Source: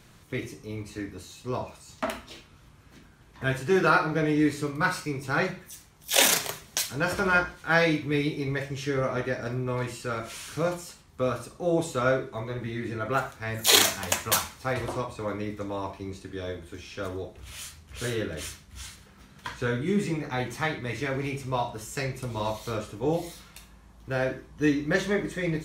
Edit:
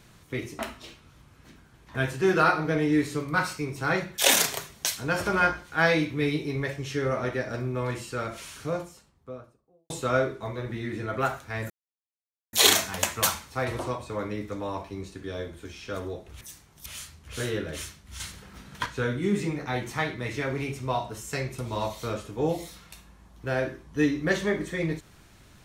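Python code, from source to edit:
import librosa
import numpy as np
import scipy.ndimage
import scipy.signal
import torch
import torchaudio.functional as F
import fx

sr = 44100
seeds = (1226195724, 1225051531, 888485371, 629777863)

y = fx.studio_fade_out(x, sr, start_s=10.05, length_s=1.77)
y = fx.edit(y, sr, fx.cut(start_s=0.59, length_s=1.47),
    fx.move(start_s=5.65, length_s=0.45, to_s=17.5),
    fx.insert_silence(at_s=13.62, length_s=0.83),
    fx.clip_gain(start_s=18.84, length_s=0.66, db=6.0), tone=tone)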